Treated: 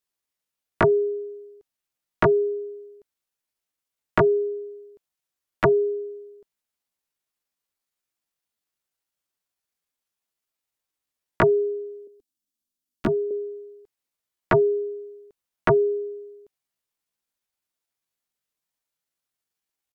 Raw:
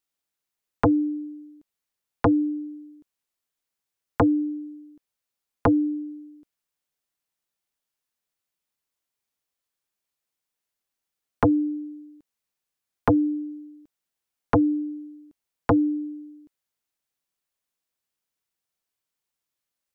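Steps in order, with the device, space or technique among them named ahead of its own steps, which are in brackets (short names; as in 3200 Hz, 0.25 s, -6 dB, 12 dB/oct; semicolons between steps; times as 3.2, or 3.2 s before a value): chipmunk voice (pitch shift +5.5 st); 12.07–13.31 graphic EQ 125/250/500/1000/2000 Hz -10/+11/-9/-9/-11 dB; gain +1 dB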